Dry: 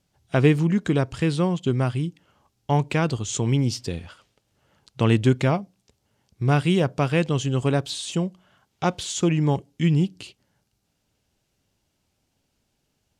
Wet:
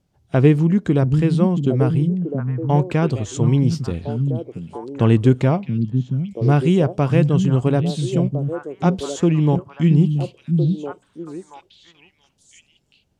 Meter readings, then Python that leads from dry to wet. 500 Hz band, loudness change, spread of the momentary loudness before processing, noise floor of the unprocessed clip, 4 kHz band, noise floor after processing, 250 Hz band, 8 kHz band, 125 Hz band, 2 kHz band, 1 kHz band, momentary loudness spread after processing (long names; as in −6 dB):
+4.5 dB, +4.5 dB, 8 LU, −74 dBFS, −4.0 dB, −64 dBFS, +6.0 dB, can't be measured, +6.5 dB, −2.0 dB, +1.5 dB, 11 LU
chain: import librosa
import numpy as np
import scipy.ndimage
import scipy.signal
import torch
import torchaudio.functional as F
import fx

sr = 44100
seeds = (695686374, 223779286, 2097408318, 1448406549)

y = fx.tilt_shelf(x, sr, db=5.0, hz=1100.0)
y = fx.echo_stepped(y, sr, ms=679, hz=170.0, octaves=1.4, feedback_pct=70, wet_db=-2.5)